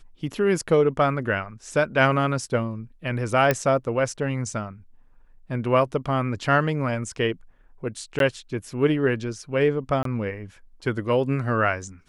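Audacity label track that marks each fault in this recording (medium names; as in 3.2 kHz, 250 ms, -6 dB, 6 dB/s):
3.510000	3.510000	pop -7 dBFS
8.190000	8.200000	dropout 12 ms
10.030000	10.050000	dropout 23 ms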